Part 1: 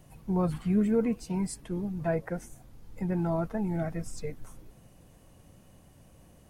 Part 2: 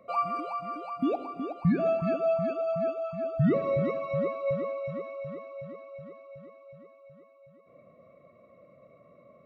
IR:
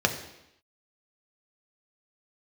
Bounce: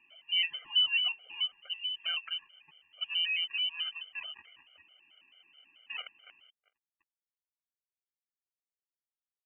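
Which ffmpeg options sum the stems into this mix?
-filter_complex "[0:a]volume=1.12[s0];[1:a]acrusher=bits=2:mix=0:aa=0.5,adelay=2500,volume=0.631[s1];[s0][s1]amix=inputs=2:normalize=0,highpass=160,lowpass=f=2700:t=q:w=0.5098,lowpass=f=2700:t=q:w=0.6013,lowpass=f=2700:t=q:w=0.9,lowpass=f=2700:t=q:w=2.563,afreqshift=-3200,afftfilt=real='re*gt(sin(2*PI*4.6*pts/sr)*(1-2*mod(floor(b*sr/1024/400),2)),0)':imag='im*gt(sin(2*PI*4.6*pts/sr)*(1-2*mod(floor(b*sr/1024/400),2)),0)':win_size=1024:overlap=0.75"

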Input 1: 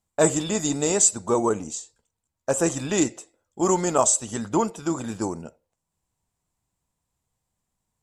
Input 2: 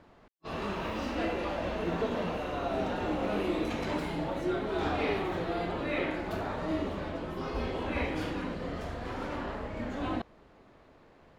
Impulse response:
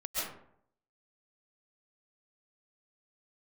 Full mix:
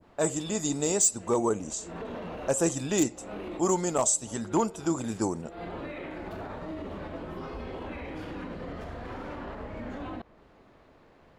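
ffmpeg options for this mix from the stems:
-filter_complex "[0:a]dynaudnorm=f=100:g=9:m=2.51,asoftclip=type=hard:threshold=0.447,volume=0.376,asplit=2[s0][s1];[1:a]alimiter=level_in=2:limit=0.0631:level=0:latency=1:release=61,volume=0.501,adynamicequalizer=threshold=0.00112:dfrequency=2900:dqfactor=0.7:tfrequency=2900:tqfactor=0.7:attack=5:release=100:ratio=0.375:range=2.5:mode=cutabove:tftype=highshelf,volume=1.06[s2];[s1]apad=whole_len=502213[s3];[s2][s3]sidechaincompress=threshold=0.00631:ratio=5:attack=5.2:release=166[s4];[s0][s4]amix=inputs=2:normalize=0,adynamicequalizer=threshold=0.00794:dfrequency=1500:dqfactor=0.71:tfrequency=1500:tqfactor=0.71:attack=5:release=100:ratio=0.375:range=3:mode=cutabove:tftype=bell"

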